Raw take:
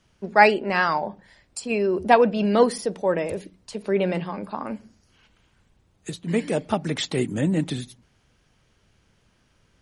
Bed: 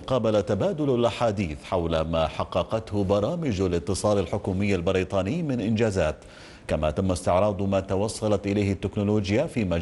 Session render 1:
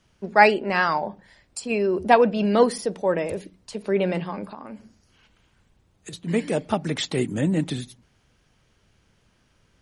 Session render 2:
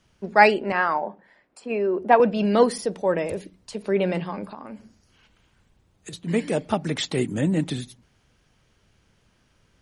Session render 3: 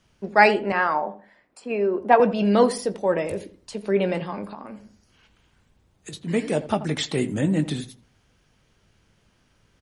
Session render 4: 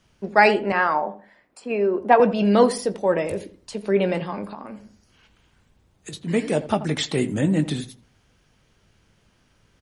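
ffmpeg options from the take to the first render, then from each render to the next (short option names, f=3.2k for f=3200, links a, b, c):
-filter_complex "[0:a]asettb=1/sr,asplit=3[a][b][c];[a]atrim=end=4.454[d];[b]atrim=start=4.45:end=6.13,asetpts=PTS-STARTPTS,afade=t=in:d=0.004:c=qsin,afade=t=out:st=1.676:d=0.004:c=qsin,acompressor=threshold=-33dB:ratio=10:attack=3.2:release=140:knee=1:detection=peak[e];[c]atrim=start=6.126[f];[d][e]acrossfade=d=0.004:c1=hsin:c2=qsin[g];[g][f]acrossfade=d=0.004:c1=qsin:c2=hsin"
-filter_complex "[0:a]asettb=1/sr,asplit=3[a][b][c];[a]atrim=end=0.724[d];[b]atrim=start=0.72:end=2.2,asetpts=PTS-STARTPTS,afade=t=in:d=0.004:c=qsin,afade=t=out:st=1.476:d=0.004:c=qsin,acrossover=split=200 2400:gain=0.1 1 0.158[e][f][g];[e][f][g]amix=inputs=3:normalize=0[h];[c]atrim=start=2.196[i];[d][h]acrossfade=d=0.004:c1=hsin:c2=qsin[j];[j][i]acrossfade=d=0.004:c1=qsin:c2=hsin"
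-filter_complex "[0:a]asplit=2[a][b];[b]adelay=20,volume=-12.5dB[c];[a][c]amix=inputs=2:normalize=0,asplit=2[d][e];[e]adelay=83,lowpass=f=1.4k:p=1,volume=-13.5dB,asplit=2[f][g];[g]adelay=83,lowpass=f=1.4k:p=1,volume=0.27,asplit=2[h][i];[i]adelay=83,lowpass=f=1.4k:p=1,volume=0.27[j];[d][f][h][j]amix=inputs=4:normalize=0"
-af "volume=1.5dB,alimiter=limit=-3dB:level=0:latency=1"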